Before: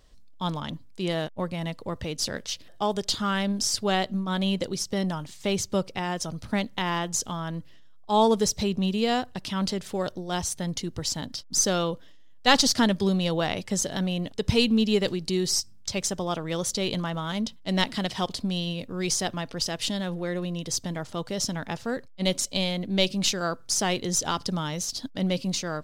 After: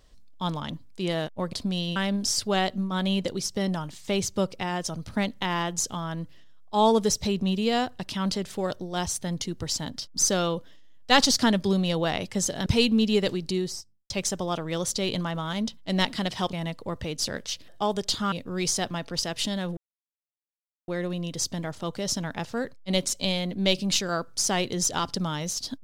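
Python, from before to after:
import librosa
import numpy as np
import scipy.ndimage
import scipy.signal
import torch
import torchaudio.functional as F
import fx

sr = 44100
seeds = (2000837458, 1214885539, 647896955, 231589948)

y = fx.studio_fade_out(x, sr, start_s=15.2, length_s=0.69)
y = fx.edit(y, sr, fx.swap(start_s=1.53, length_s=1.79, other_s=18.32, other_length_s=0.43),
    fx.cut(start_s=14.02, length_s=0.43),
    fx.insert_silence(at_s=20.2, length_s=1.11), tone=tone)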